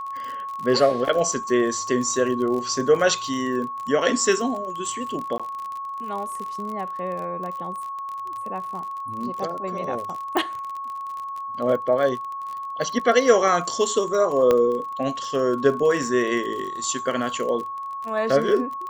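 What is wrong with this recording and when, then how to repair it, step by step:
crackle 36/s -29 dBFS
tone 1100 Hz -29 dBFS
5.38–5.4 gap 16 ms
10.37 pop
14.51 pop -8 dBFS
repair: de-click; notch 1100 Hz, Q 30; interpolate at 5.38, 16 ms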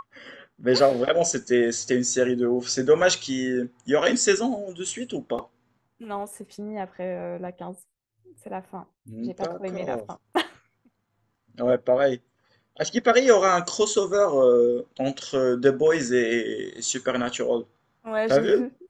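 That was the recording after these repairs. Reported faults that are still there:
10.37 pop

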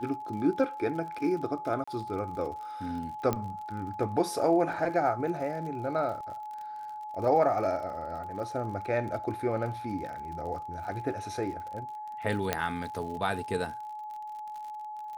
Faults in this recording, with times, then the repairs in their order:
crackle 55/s -39 dBFS
tone 850 Hz -37 dBFS
1.84–1.88 gap 35 ms
3.33 pop -15 dBFS
12.53 pop -11 dBFS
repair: de-click; notch 850 Hz, Q 30; interpolate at 1.84, 35 ms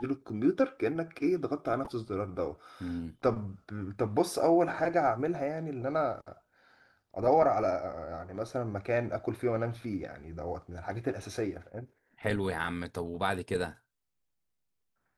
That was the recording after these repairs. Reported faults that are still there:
none

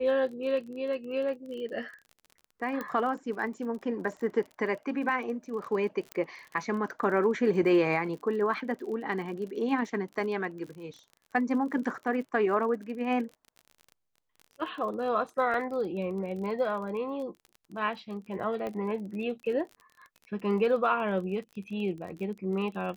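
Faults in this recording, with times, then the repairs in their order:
crackle 37/s -39 dBFS
2.81 pop -21 dBFS
6.12 pop -20 dBFS
15.54 gap 2.3 ms
18.67 pop -23 dBFS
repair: de-click; interpolate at 15.54, 2.3 ms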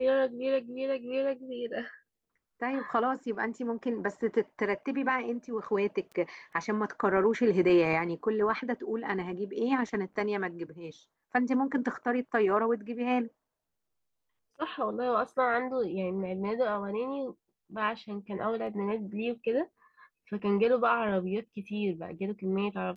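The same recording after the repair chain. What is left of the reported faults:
6.12 pop
18.67 pop

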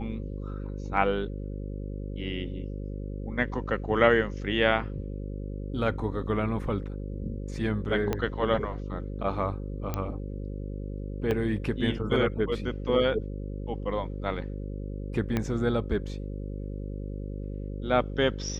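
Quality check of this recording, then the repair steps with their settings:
buzz 50 Hz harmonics 11 -35 dBFS
8.13 pop -14 dBFS
9.94 pop -16 dBFS
11.31 gap 4.1 ms
15.37 pop -14 dBFS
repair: de-click; de-hum 50 Hz, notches 11; interpolate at 11.31, 4.1 ms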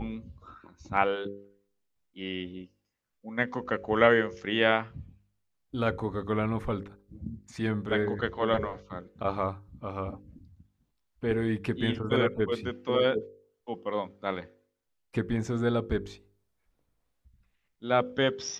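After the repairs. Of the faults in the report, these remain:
8.13 pop
15.37 pop

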